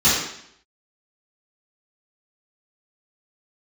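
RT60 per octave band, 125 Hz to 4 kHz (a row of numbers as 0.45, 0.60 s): 0.65, 0.75, 0.70, 0.70, 0.70, 0.70 s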